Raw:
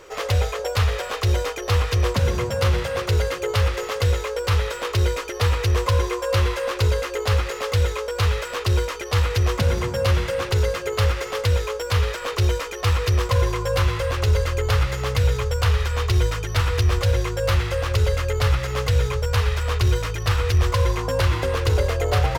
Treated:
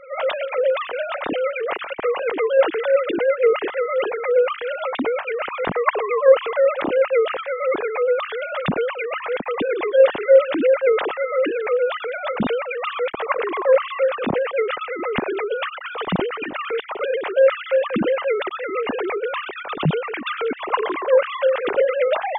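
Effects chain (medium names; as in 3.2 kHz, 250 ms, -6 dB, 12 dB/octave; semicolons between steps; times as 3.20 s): formants replaced by sine waves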